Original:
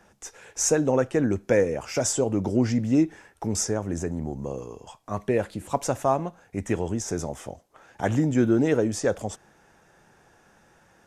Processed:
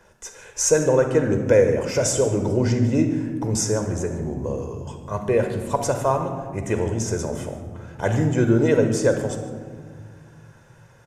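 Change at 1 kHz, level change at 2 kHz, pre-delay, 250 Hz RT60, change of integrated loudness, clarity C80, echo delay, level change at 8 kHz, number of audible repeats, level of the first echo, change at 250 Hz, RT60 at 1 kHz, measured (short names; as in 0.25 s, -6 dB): +2.5 dB, +4.0 dB, 33 ms, 3.0 s, +4.0 dB, 8.5 dB, 0.148 s, +3.0 dB, 1, -17.0 dB, +1.5 dB, 1.5 s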